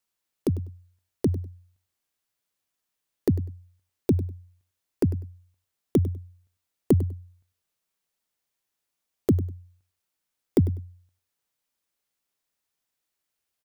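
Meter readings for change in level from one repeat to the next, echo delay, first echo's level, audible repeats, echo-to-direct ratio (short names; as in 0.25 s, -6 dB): -14.5 dB, 99 ms, -16.0 dB, 2, -16.0 dB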